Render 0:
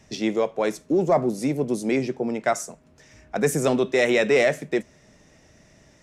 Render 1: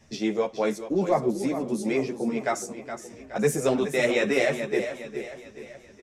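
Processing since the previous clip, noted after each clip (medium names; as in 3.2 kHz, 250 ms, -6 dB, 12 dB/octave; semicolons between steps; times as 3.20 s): on a send: feedback delay 419 ms, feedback 47%, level -10 dB; on the sum: three-phase chorus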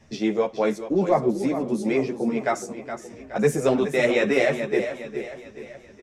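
treble shelf 4.9 kHz -8 dB; trim +3 dB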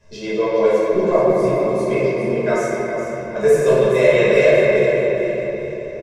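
comb 1.9 ms, depth 86%; reverberation RT60 3.5 s, pre-delay 5 ms, DRR -9 dB; trim -5.5 dB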